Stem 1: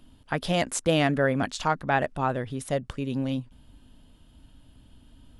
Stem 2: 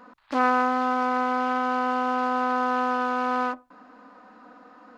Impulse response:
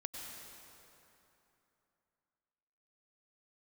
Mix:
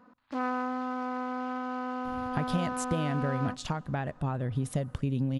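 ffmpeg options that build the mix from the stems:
-filter_complex "[0:a]acompressor=threshold=-35dB:ratio=5,adelay=2050,volume=0dB,asplit=2[link_01][link_02];[link_02]volume=-23dB[link_03];[1:a]volume=-12.5dB,asplit=2[link_04][link_05];[link_05]volume=-20dB[link_06];[2:a]atrim=start_sample=2205[link_07];[link_03][link_06]amix=inputs=2:normalize=0[link_08];[link_08][link_07]afir=irnorm=-1:irlink=0[link_09];[link_01][link_04][link_09]amix=inputs=3:normalize=0,equalizer=frequency=110:width=0.55:gain=12.5"

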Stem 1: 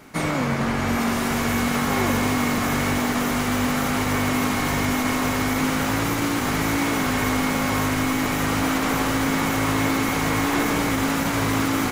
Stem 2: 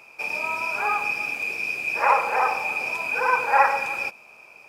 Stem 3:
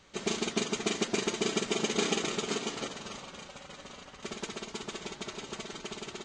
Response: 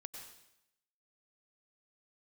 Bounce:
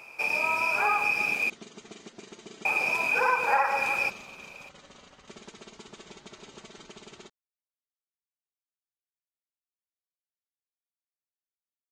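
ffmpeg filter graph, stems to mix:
-filter_complex "[1:a]volume=1dB,asplit=3[link_01][link_02][link_03];[link_01]atrim=end=1.5,asetpts=PTS-STARTPTS,afade=type=out:start_time=1.496:duration=0.004:curve=hsin[link_04];[link_02]atrim=start=1.5:end=2.65,asetpts=PTS-STARTPTS,volume=0[link_05];[link_03]atrim=start=2.65,asetpts=PTS-STARTPTS,afade=type=in:duration=0.004:curve=hsin[link_06];[link_04][link_05][link_06]concat=n=3:v=0:a=1[link_07];[2:a]acompressor=threshold=-37dB:ratio=12,adelay=1050,volume=-5dB[link_08];[link_07][link_08]amix=inputs=2:normalize=0,acompressor=threshold=-20dB:ratio=12"

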